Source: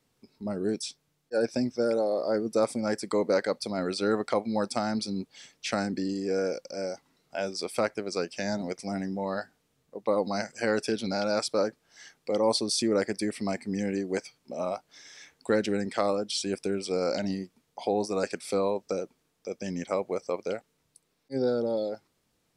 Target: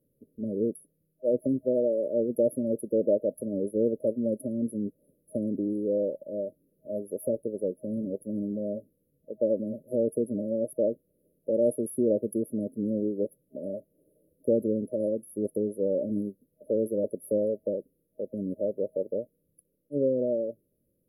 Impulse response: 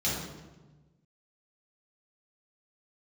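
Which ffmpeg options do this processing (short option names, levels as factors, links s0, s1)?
-af "afftfilt=real='re*(1-between(b*sr/4096,590,9400))':imag='im*(1-between(b*sr/4096,590,9400))':win_size=4096:overlap=0.75,asetrate=47187,aresample=44100,volume=1.19"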